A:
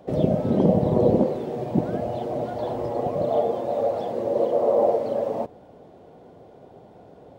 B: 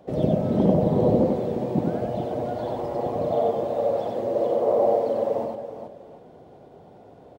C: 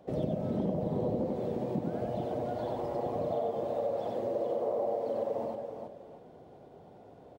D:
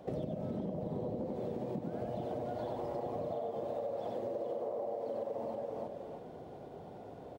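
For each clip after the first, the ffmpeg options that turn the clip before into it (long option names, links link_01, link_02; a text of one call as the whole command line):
ffmpeg -i in.wav -af "aecho=1:1:93|420|738:0.708|0.376|0.126,volume=-2.5dB" out.wav
ffmpeg -i in.wav -af "acompressor=threshold=-24dB:ratio=4,volume=-5dB" out.wav
ffmpeg -i in.wav -af "acompressor=threshold=-40dB:ratio=6,volume=4.5dB" out.wav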